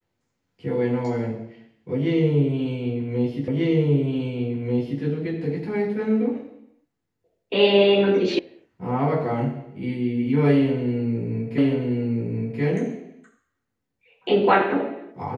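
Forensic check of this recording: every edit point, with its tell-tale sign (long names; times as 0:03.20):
0:03.48: the same again, the last 1.54 s
0:08.39: cut off before it has died away
0:11.58: the same again, the last 1.03 s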